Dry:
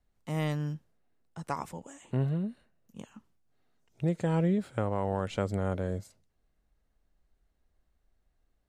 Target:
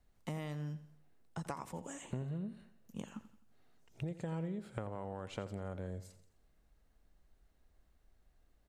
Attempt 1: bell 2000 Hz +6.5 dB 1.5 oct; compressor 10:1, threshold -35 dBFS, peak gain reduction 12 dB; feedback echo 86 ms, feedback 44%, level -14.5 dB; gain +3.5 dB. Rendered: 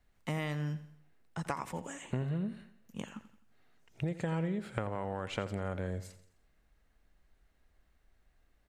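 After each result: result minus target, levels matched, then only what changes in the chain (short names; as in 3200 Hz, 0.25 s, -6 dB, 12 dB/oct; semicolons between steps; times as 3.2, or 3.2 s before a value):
compressor: peak gain reduction -5.5 dB; 2000 Hz band +4.0 dB
change: compressor 10:1, threshold -41.5 dBFS, peak gain reduction 18 dB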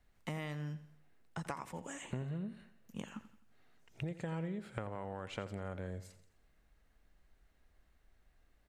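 2000 Hz band +5.0 dB
remove: bell 2000 Hz +6.5 dB 1.5 oct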